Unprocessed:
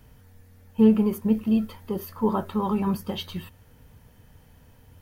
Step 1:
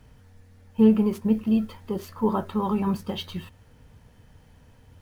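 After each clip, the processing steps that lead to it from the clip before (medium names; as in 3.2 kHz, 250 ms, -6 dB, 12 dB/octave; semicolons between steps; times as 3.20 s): median filter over 3 samples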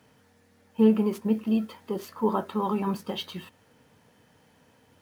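high-pass 220 Hz 12 dB/octave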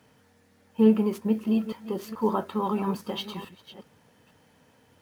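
chunks repeated in reverse 431 ms, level -14 dB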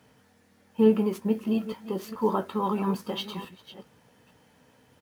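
doubling 16 ms -11 dB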